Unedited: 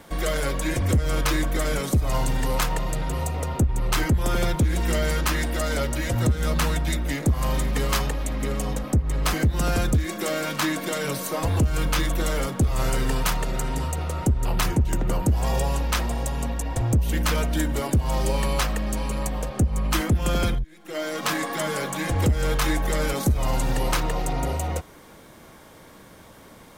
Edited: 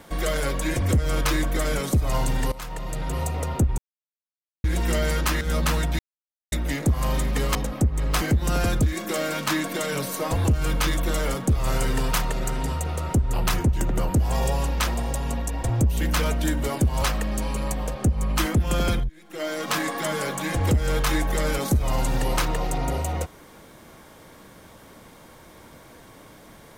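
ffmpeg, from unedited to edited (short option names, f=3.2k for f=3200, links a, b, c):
-filter_complex "[0:a]asplit=8[a][b][c][d][e][f][g][h];[a]atrim=end=2.52,asetpts=PTS-STARTPTS,afade=t=out:st=2.516:d=0.004:c=hsin:silence=0.112202[i];[b]atrim=start=2.52:end=3.78,asetpts=PTS-STARTPTS,afade=t=in:d=0.65:silence=0.112202,afade=t=out:st=1.256:d=0.004:c=hsin[j];[c]atrim=start=3.78:end=4.64,asetpts=PTS-STARTPTS,volume=0[k];[d]atrim=start=4.64:end=5.412,asetpts=PTS-STARTPTS,afade=t=in:d=0.004:c=hsin[l];[e]atrim=start=6.338:end=6.92,asetpts=PTS-STARTPTS,afade=t=out:st=0.578:d=0.004:c=hsin,apad=pad_dur=0.53[m];[f]atrim=start=6.92:end=7.952,asetpts=PTS-STARTPTS,afade=t=in:d=0.004:c=hsin[n];[g]atrim=start=8.668:end=18.142[o];[h]atrim=start=18.568[p];[i][j][k][l]concat=n=4:v=0:a=1[q];[m][n]concat=n=2:v=0:a=1[r];[q][r]acrossfade=d=0.004:c1=hsin:c2=hsin[s];[s][o]acrossfade=d=0.004:c1=hsin:c2=hsin[t];[t][p]acrossfade=d=0.004:c1=hsin:c2=hsin"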